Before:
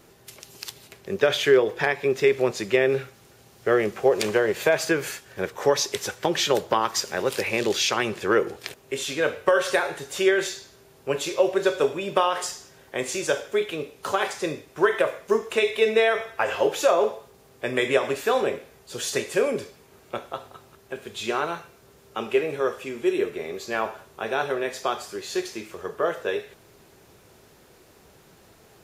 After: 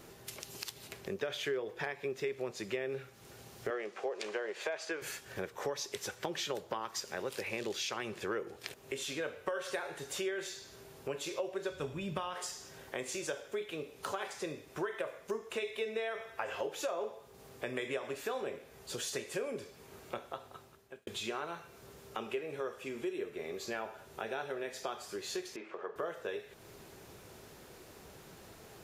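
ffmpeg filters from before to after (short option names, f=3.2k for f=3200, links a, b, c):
-filter_complex "[0:a]asettb=1/sr,asplit=3[a][b][c];[a]atrim=end=3.704[d];[b]atrim=start=3.7:end=5.02,asetpts=PTS-STARTPTS,afade=t=in:d=0.004:c=qsin,afade=t=out:st=1.316:d=0.004:c=qsin,highpass=410,lowpass=6.6k[e];[c]atrim=start=5.016[f];[d][e]acrossfade=d=0.004:c1=hsin:c2=qsin[g];[g][f]acrossfade=d=0.004:c1=qsin:c2=hsin,asplit=3[h][i][j];[h]afade=t=out:st=11.7:d=0.02[k];[i]asubboost=boost=8:cutoff=150,afade=t=in:st=11.7:d=0.02,afade=t=out:st=12.33:d=0.02[l];[j]afade=t=in:st=12.33:d=0.02[m];[k][l][m]amix=inputs=3:normalize=0,asettb=1/sr,asplit=3[n][o][p];[n]atrim=end=23.704[q];[o]atrim=start=23.7:end=24.89,asetpts=PTS-STARTPTS,afade=t=in:d=0.004:c=qsin,afade=t=out:st=1.186:d=0.004:c=qsin,bandreject=f=1.1k:w=8.8[r];[p]atrim=start=24.886[s];[q][r]acrossfade=d=0.004:c1=hsin:c2=qsin[t];[t][s]acrossfade=d=0.004:c1=qsin:c2=hsin,asettb=1/sr,asplit=3[u][v][w];[u]atrim=end=25.564[x];[v]atrim=start=25.56:end=25.96,asetpts=PTS-STARTPTS,afade=t=in:d=0.004:c=qsin,afade=t=out:st=0.396:d=0.004:c=qsin,highpass=400,lowpass=2k[y];[w]atrim=start=25.956[z];[x][y]acrossfade=d=0.004:c1=hsin:c2=qsin[aa];[aa][z]acrossfade=d=0.004:c1=qsin:c2=hsin,asplit=2[ab][ac];[ab]atrim=end=21.07,asetpts=PTS-STARTPTS,afade=t=out:st=20.19:d=0.88[ad];[ac]atrim=start=21.07,asetpts=PTS-STARTPTS,afade=t=in:d=0.004:c=hsin[ae];[ad][ae]concat=n=2:v=0:a=1,acompressor=threshold=-40dB:ratio=3"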